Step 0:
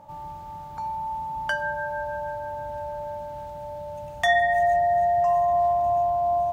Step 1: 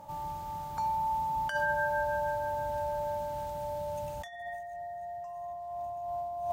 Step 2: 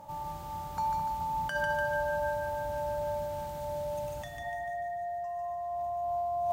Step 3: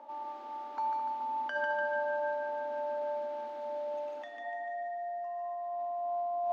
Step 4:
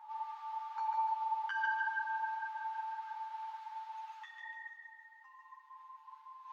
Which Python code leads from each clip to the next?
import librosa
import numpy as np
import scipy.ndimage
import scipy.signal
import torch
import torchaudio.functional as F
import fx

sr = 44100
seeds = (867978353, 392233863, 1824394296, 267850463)

y1 = fx.high_shelf(x, sr, hz=4600.0, db=9.5)
y1 = fx.over_compress(y1, sr, threshold_db=-27.0, ratio=-0.5)
y1 = y1 * librosa.db_to_amplitude(-5.0)
y2 = fx.echo_split(y1, sr, split_hz=1100.0, low_ms=213, high_ms=147, feedback_pct=52, wet_db=-3.5)
y3 = scipy.signal.sosfilt(scipy.signal.cheby1(10, 1.0, 230.0, 'highpass', fs=sr, output='sos'), y2)
y3 = fx.air_absorb(y3, sr, metres=240.0)
y4 = fx.brickwall_highpass(y3, sr, low_hz=800.0)
y4 = fx.ensemble(y4, sr)
y4 = y4 * librosa.db_to_amplitude(2.0)